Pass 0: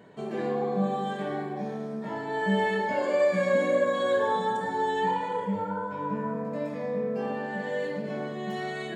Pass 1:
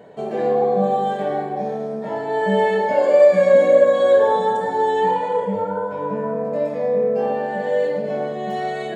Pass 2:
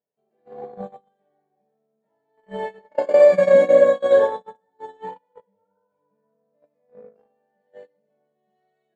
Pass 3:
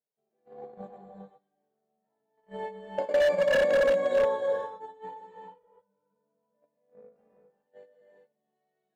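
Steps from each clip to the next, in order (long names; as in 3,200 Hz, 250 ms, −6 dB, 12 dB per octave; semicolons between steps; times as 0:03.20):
flat-topped bell 600 Hz +8.5 dB 1.1 octaves; level +3.5 dB
noise gate −14 dBFS, range −47 dB
reverb whose tail is shaped and stops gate 430 ms rising, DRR 2 dB; wave folding −8.5 dBFS; level −9 dB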